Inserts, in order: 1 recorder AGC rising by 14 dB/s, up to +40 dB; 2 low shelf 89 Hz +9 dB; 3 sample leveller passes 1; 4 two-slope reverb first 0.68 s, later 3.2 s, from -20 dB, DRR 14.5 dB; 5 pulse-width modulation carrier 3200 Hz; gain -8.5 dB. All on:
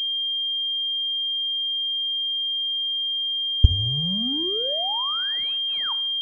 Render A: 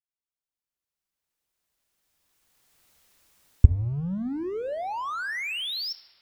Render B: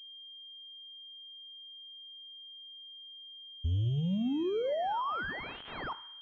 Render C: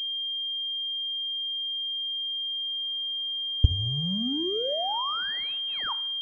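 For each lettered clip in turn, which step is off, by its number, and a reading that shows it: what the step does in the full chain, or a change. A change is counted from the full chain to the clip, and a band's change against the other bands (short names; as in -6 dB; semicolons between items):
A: 5, crest factor change +5.0 dB; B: 1, crest factor change -12.0 dB; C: 2, 125 Hz band -4.5 dB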